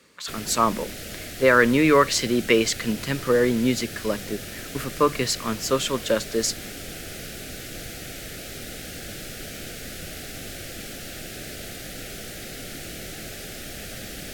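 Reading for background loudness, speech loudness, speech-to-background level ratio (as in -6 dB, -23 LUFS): -35.5 LUFS, -22.0 LUFS, 13.5 dB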